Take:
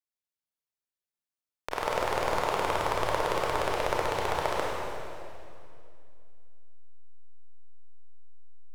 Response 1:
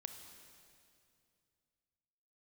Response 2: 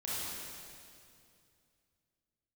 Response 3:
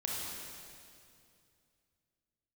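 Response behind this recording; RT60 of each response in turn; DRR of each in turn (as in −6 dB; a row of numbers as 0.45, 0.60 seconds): 3; 2.5, 2.5, 2.5 seconds; 6.0, −9.0, −4.0 decibels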